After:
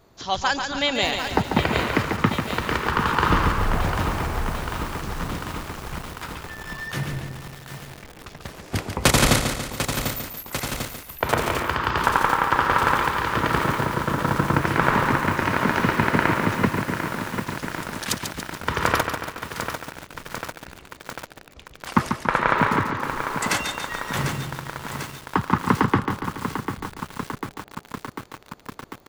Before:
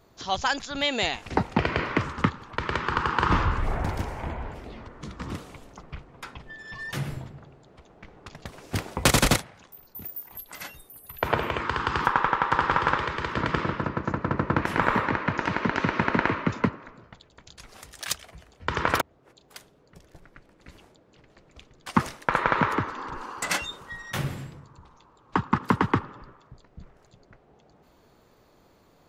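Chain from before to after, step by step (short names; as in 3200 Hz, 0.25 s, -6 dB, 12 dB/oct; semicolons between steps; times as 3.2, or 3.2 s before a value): feedback echo 0.142 s, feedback 55%, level -7 dB; lo-fi delay 0.746 s, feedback 80%, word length 6-bit, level -8 dB; gain +2.5 dB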